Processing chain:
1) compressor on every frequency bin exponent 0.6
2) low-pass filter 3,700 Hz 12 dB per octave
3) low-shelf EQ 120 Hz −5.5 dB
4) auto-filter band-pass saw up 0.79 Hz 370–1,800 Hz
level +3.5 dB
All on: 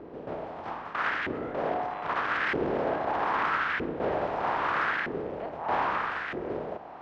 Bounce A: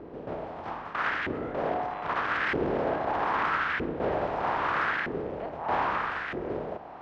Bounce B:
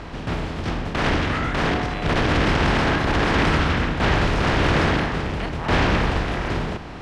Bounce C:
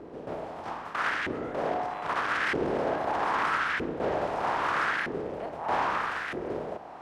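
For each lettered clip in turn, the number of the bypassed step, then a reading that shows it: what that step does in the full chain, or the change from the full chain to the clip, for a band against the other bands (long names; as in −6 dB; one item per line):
3, 125 Hz band +2.5 dB
4, 125 Hz band +15.5 dB
2, 4 kHz band +2.0 dB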